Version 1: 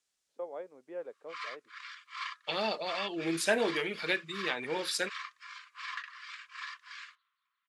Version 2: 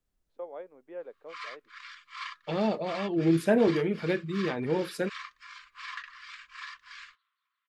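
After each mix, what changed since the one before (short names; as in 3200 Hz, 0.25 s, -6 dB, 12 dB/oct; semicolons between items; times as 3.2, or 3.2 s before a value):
second voice: remove weighting filter ITU-R 468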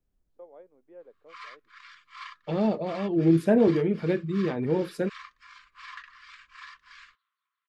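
first voice -9.5 dB; master: add tilt shelf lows +5 dB, about 750 Hz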